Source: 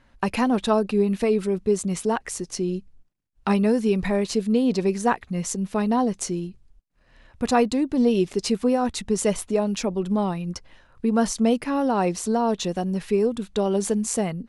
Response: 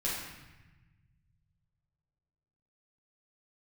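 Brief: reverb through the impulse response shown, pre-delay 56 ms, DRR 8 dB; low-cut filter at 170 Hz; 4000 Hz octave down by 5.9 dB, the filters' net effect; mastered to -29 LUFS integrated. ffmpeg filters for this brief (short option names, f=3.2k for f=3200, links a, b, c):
-filter_complex "[0:a]highpass=170,equalizer=f=4k:t=o:g=-8,asplit=2[a][b];[1:a]atrim=start_sample=2205,adelay=56[c];[b][c]afir=irnorm=-1:irlink=0,volume=-14dB[d];[a][d]amix=inputs=2:normalize=0,volume=-5dB"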